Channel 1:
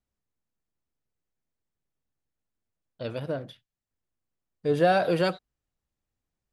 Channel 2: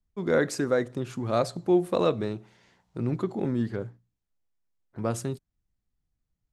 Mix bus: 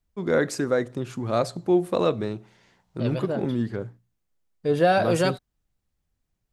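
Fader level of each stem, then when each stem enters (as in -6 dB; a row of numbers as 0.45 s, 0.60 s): +2.0 dB, +1.5 dB; 0.00 s, 0.00 s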